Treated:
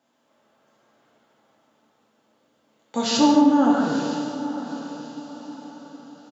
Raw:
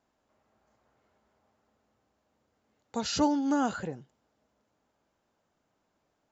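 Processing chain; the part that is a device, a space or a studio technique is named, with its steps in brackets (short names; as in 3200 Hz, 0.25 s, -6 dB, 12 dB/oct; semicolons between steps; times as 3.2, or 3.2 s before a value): PA in a hall (HPF 120 Hz 24 dB/oct; bell 3300 Hz +5 dB 0.47 oct; echo 0.148 s -5 dB; reverb RT60 2.3 s, pre-delay 83 ms, DRR 8 dB); 3.17–3.95 LPF 1400 Hz 6 dB/oct; diffused feedback echo 0.931 s, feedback 41%, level -12.5 dB; non-linear reverb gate 0.26 s falling, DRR -1.5 dB; gain +4 dB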